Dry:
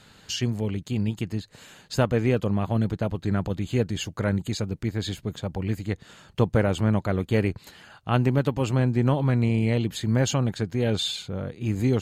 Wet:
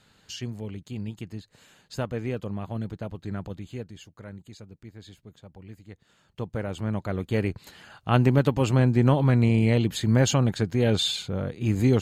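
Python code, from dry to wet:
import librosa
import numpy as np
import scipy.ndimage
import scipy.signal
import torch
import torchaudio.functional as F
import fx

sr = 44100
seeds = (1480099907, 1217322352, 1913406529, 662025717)

y = fx.gain(x, sr, db=fx.line((3.51, -8.0), (4.07, -17.0), (5.88, -17.0), (7.08, -4.5), (8.22, 2.0)))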